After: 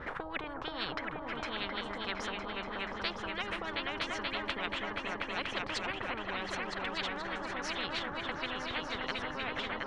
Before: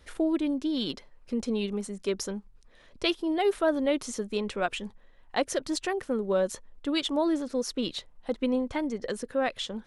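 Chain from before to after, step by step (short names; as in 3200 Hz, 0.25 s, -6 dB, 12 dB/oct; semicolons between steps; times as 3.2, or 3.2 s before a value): LFO low-pass sine 6.3 Hz 770–1700 Hz; repeats that get brighter 0.24 s, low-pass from 200 Hz, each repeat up 2 oct, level 0 dB; spectral compressor 10:1; gain -7 dB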